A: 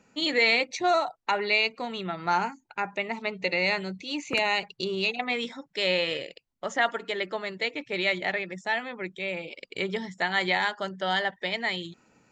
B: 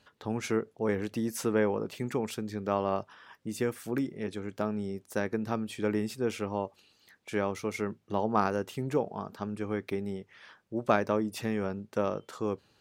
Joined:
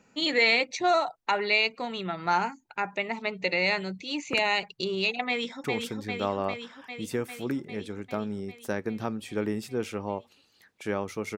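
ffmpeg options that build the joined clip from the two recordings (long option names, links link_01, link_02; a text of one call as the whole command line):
ffmpeg -i cue0.wav -i cue1.wav -filter_complex "[0:a]apad=whole_dur=11.37,atrim=end=11.37,atrim=end=5.642[link_01];[1:a]atrim=start=2.108:end=7.84[link_02];[link_01][link_02]acrossfade=duration=0.004:curve1=hsin:curve2=hsin,asplit=2[link_03][link_04];[link_04]afade=type=in:start_time=5.28:duration=0.01,afade=type=out:start_time=5.64:duration=0.01,aecho=0:1:400|800|1200|1600|2000|2400|2800|3200|3600|4000|4400|4800:0.630957|0.473218|0.354914|0.266185|0.199639|0.149729|0.112297|0.0842226|0.063167|0.0473752|0.0355314|0.0266486[link_05];[link_03][link_05]amix=inputs=2:normalize=0" out.wav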